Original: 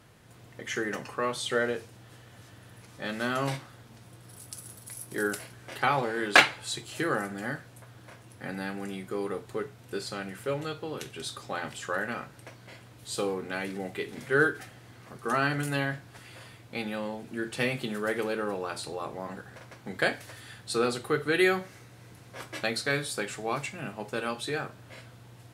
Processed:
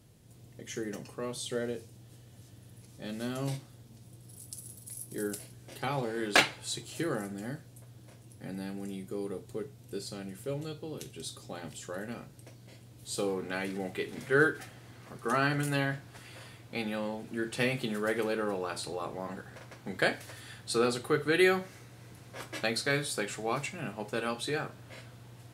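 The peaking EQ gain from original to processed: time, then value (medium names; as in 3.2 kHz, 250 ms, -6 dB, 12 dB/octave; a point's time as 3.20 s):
peaking EQ 1.4 kHz 2.4 oct
5.64 s -15 dB
6.27 s -7.5 dB
6.86 s -7.5 dB
7.54 s -14 dB
12.84 s -14 dB
13.43 s -2 dB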